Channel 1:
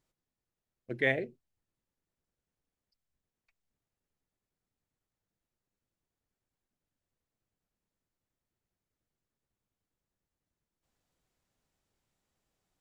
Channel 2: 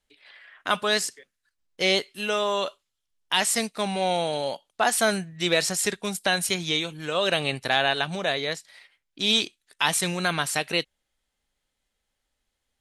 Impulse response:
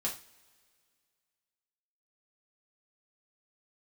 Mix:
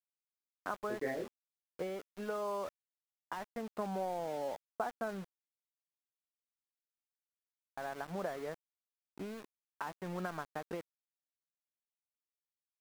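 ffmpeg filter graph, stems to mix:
-filter_complex "[0:a]flanger=delay=20:depth=5.8:speed=0.26,volume=0.841[s0];[1:a]acompressor=threshold=0.0355:ratio=12,volume=0.668,asplit=3[s1][s2][s3];[s1]atrim=end=5.26,asetpts=PTS-STARTPTS,afade=t=out:st=5.256:d=0.004:c=hsin[s4];[s2]atrim=start=5.26:end=7.77,asetpts=PTS-STARTPTS,volume=0[s5];[s3]atrim=start=7.77,asetpts=PTS-STARTPTS,afade=t=in:d=0.004:c=hsin[s6];[s4][s5][s6]concat=n=3:v=0:a=1[s7];[s0][s7]amix=inputs=2:normalize=0,lowpass=f=1400:w=0.5412,lowpass=f=1400:w=1.3066,equalizer=f=130:w=5.3:g=-14.5,aeval=exprs='val(0)*gte(abs(val(0)),0.00501)':c=same"

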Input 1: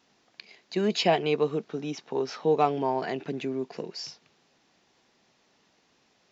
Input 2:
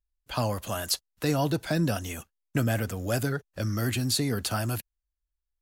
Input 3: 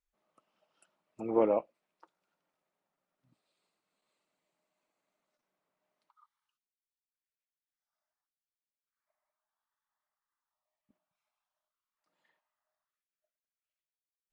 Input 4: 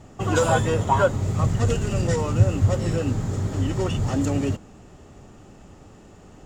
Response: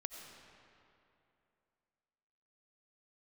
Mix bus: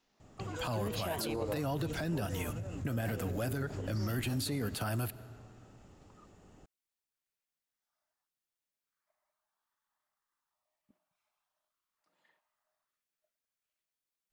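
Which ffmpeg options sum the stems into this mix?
-filter_complex "[0:a]volume=0.299,asplit=3[s0][s1][s2];[s0]atrim=end=2.23,asetpts=PTS-STARTPTS,afade=t=out:st=2.226:d=0.004:c=hsin[s3];[s1]atrim=start=2.23:end=3.06,asetpts=PTS-STARTPTS,volume=0[s4];[s2]atrim=start=3.06,asetpts=PTS-STARTPTS,afade=t=in:d=0.004:c=hsin[s5];[s3][s4][s5]concat=n=3:v=0:a=1[s6];[1:a]equalizer=f=6300:t=o:w=1:g=-7,adelay=300,volume=0.708,asplit=2[s7][s8];[s8]volume=0.266[s9];[2:a]acompressor=threshold=0.0178:ratio=6,volume=1.41[s10];[3:a]alimiter=limit=0.15:level=0:latency=1:release=47,acompressor=threshold=0.0562:ratio=6,adelay=200,volume=0.251[s11];[4:a]atrim=start_sample=2205[s12];[s9][s12]afir=irnorm=-1:irlink=0[s13];[s6][s7][s10][s11][s13]amix=inputs=5:normalize=0,alimiter=level_in=1.33:limit=0.0631:level=0:latency=1:release=60,volume=0.75"

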